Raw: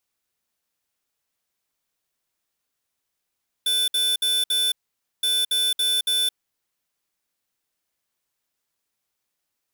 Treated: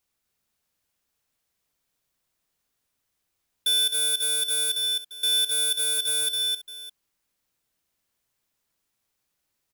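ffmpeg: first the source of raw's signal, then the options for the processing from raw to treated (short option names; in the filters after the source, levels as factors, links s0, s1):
-f lavfi -i "aevalsrc='0.0841*(2*lt(mod(3510*t,1),0.5)-1)*clip(min(mod(mod(t,1.57),0.28),0.22-mod(mod(t,1.57),0.28))/0.005,0,1)*lt(mod(t,1.57),1.12)':d=3.14:s=44100"
-af "lowshelf=f=210:g=6.5,aecho=1:1:136|260|607:0.211|0.562|0.126"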